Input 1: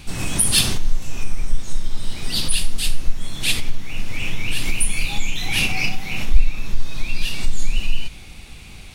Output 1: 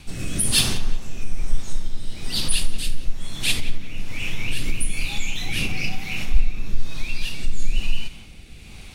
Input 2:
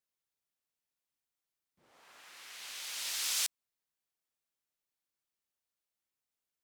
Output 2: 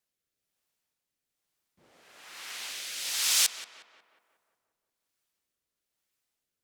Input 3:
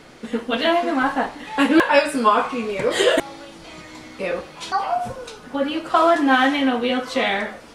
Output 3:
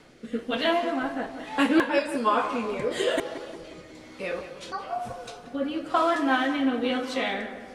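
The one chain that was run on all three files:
rotating-speaker cabinet horn 1.1 Hz
on a send: tape delay 180 ms, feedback 63%, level −10 dB, low-pass 1,900 Hz
on the sum: loudness normalisation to −27 LKFS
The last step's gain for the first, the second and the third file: −1.0, +9.0, −4.5 decibels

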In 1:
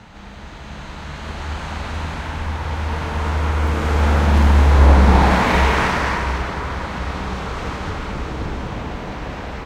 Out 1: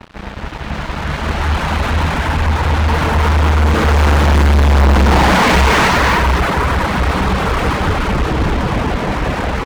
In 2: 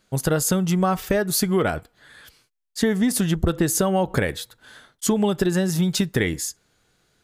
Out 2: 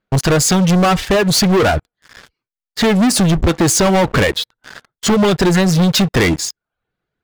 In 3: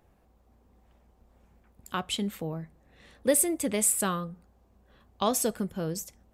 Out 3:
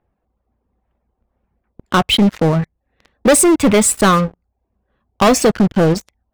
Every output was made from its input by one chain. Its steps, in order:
reverb reduction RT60 0.57 s
low-pass that shuts in the quiet parts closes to 2,300 Hz, open at −12.5 dBFS
leveller curve on the samples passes 5
loudness normalisation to −14 LKFS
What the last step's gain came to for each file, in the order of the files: −5.0, 0.0, +5.0 decibels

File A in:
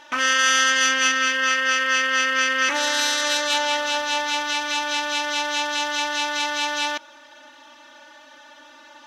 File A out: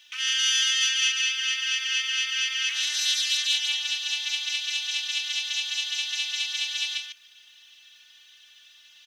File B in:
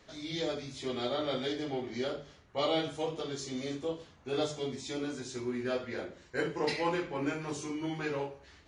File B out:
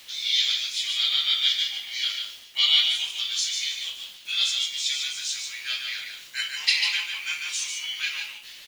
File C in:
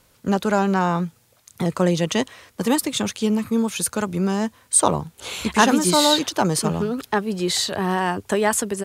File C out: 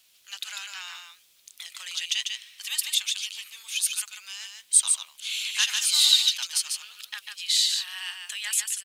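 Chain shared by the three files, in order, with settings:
four-pole ladder high-pass 2,400 Hz, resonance 40%
bit reduction 12 bits
single-tap delay 146 ms −5 dB
loudness normalisation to −24 LKFS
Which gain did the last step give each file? +2.5, +22.5, +6.0 decibels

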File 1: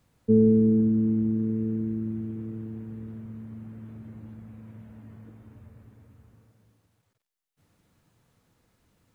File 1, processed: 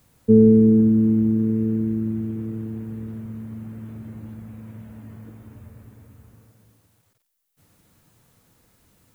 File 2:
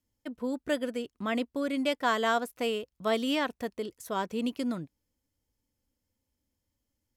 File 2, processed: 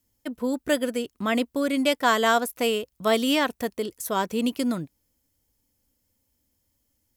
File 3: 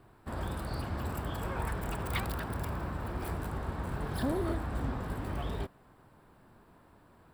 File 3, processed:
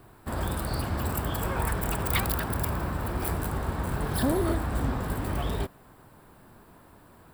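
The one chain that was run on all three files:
high-shelf EQ 8,200 Hz +11.5 dB
level +6 dB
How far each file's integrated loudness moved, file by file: +6.0, +6.5, +6.5 LU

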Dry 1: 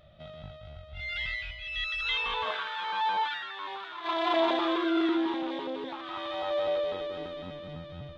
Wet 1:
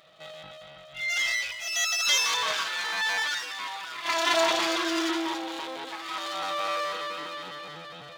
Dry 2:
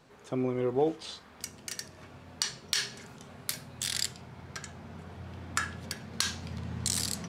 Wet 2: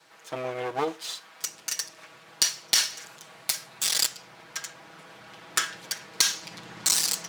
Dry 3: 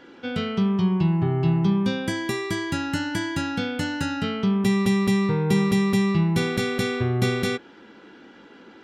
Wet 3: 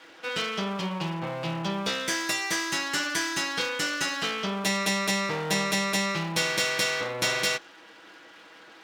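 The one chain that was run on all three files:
lower of the sound and its delayed copy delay 6.2 ms
high-pass filter 1,200 Hz 6 dB per octave
dynamic equaliser 6,000 Hz, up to +5 dB, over −51 dBFS, Q 1.9
loudness normalisation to −27 LKFS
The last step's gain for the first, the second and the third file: +8.5, +8.0, +5.0 decibels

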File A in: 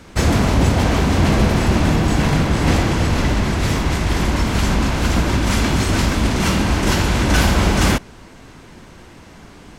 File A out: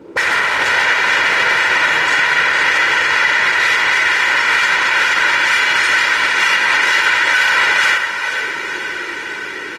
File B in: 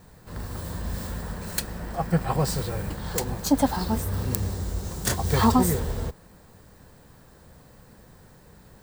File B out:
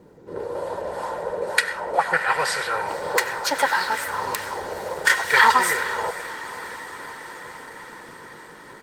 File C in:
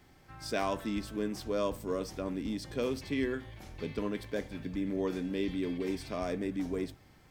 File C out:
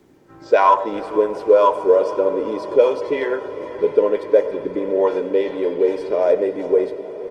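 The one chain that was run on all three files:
spectral tilt +2 dB per octave
envelope filter 250–1,800 Hz, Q 2.7, up, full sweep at −24.5 dBFS
low-shelf EQ 73 Hz −11.5 dB
notch filter 1,100 Hz, Q 28
comb filter 2.1 ms, depth 57%
feedback delay with all-pass diffusion 482 ms, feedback 75%, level −15.5 dB
comb and all-pass reverb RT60 0.86 s, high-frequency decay 0.25×, pre-delay 50 ms, DRR 15 dB
brickwall limiter −22 dBFS
Opus 24 kbit/s 48,000 Hz
normalise the peak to −1.5 dBFS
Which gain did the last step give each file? +17.5, +19.0, +24.0 decibels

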